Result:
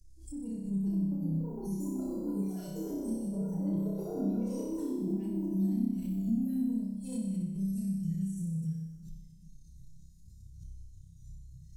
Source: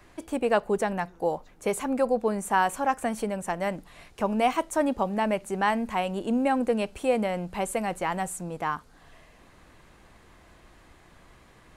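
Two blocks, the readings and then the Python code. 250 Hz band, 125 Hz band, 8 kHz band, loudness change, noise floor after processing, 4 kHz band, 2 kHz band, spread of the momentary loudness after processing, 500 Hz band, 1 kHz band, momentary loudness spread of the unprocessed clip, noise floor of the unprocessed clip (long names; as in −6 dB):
−0.5 dB, +4.5 dB, −13.0 dB, −6.5 dB, −53 dBFS, below −20 dB, below −35 dB, 19 LU, −16.0 dB, −29.0 dB, 7 LU, −56 dBFS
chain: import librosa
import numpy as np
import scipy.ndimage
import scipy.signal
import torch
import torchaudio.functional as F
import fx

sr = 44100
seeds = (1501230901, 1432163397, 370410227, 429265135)

p1 = fx.hpss_only(x, sr, part='harmonic')
p2 = scipy.signal.sosfilt(scipy.signal.cheby1(3, 1.0, [160.0, 6000.0], 'bandstop', fs=sr, output='sos'), p1)
p3 = fx.band_shelf(p2, sr, hz=1100.0, db=11.0, octaves=1.7)
p4 = fx.echo_pitch(p3, sr, ms=612, semitones=6, count=3, db_per_echo=-6.0)
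p5 = fx.high_shelf(p4, sr, hz=2000.0, db=-6.5)
p6 = fx.transient(p5, sr, attack_db=5, sustain_db=-7)
p7 = fx.over_compress(p6, sr, threshold_db=-49.0, ratio=-1.0)
p8 = p6 + (p7 * 10.0 ** (-3.0 / 20.0))
p9 = fx.small_body(p8, sr, hz=(990.0, 1400.0), ring_ms=75, db=17)
p10 = fx.noise_reduce_blind(p9, sr, reduce_db=11)
p11 = p10 + fx.room_flutter(p10, sr, wall_m=5.3, rt60_s=1.1, dry=0)
p12 = fx.room_shoebox(p11, sr, seeds[0], volume_m3=3000.0, walls='mixed', distance_m=0.61)
p13 = fx.pre_swell(p12, sr, db_per_s=89.0)
y = p13 * 10.0 ** (2.0 / 20.0)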